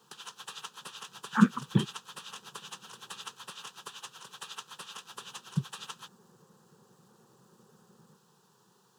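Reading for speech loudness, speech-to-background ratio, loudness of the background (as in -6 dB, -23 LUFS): -29.5 LUFS, 15.0 dB, -44.5 LUFS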